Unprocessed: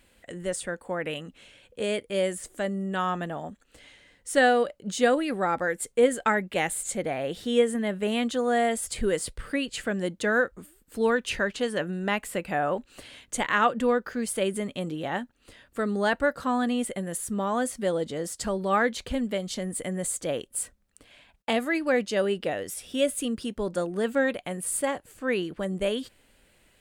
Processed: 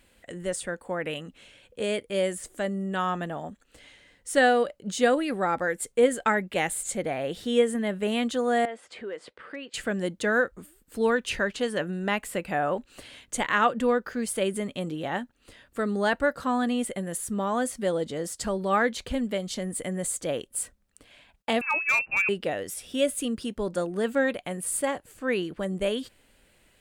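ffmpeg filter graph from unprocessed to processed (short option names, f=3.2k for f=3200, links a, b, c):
-filter_complex "[0:a]asettb=1/sr,asplit=3[a][b][c];[a]atrim=end=8.654[d];[b]atrim=start=8.65:end=9.74,asetpts=PTS-STARTPTS,afade=t=in:d=0.004:c=qsin,afade=t=out:st=1.086:d=0.004:c=qsin,highpass=370,lowpass=2.5k,acompressor=threshold=-38dB:ratio=2:attack=3.2:release=140:knee=1:detection=peak,volume=27dB,asoftclip=hard,volume=-27dB[e];[c]atrim=start=9.736[f];[d][e]acrossfade=d=0.004:c1=hsin:c2=qsin[g];[g][f]acrossfade=d=0.004:c1=qsin:c2=hsin,asettb=1/sr,asplit=3[h][i][j];[h]atrim=end=21.614[k];[i]atrim=start=21.61:end=22.29,asetpts=PTS-STARTPTS,afade=t=in:d=0.004:c=qsin,afade=t=out:st=0.676:d=0.004:c=qsin,lowpass=f=2.5k:t=q:w=0.5098,lowpass=f=2.5k:t=q:w=0.6013,lowpass=f=2.5k:t=q:w=0.9,lowpass=f=2.5k:t=q:w=2.563,afreqshift=-2900,asoftclip=type=hard:threshold=-17.5dB[l];[j]atrim=start=22.286[m];[k][l]acrossfade=d=0.004:c1=hsin:c2=qsin[n];[n][m]acrossfade=d=0.004:c1=qsin:c2=hsin"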